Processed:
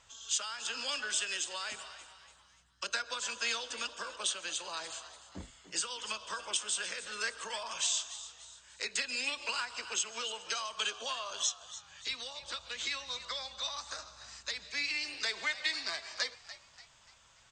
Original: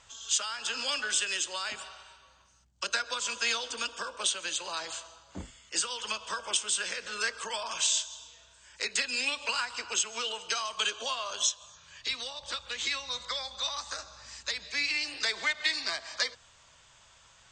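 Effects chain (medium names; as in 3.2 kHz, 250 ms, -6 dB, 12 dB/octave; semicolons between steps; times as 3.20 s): frequency-shifting echo 291 ms, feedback 43%, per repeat +100 Hz, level -14.5 dB; trim -4.5 dB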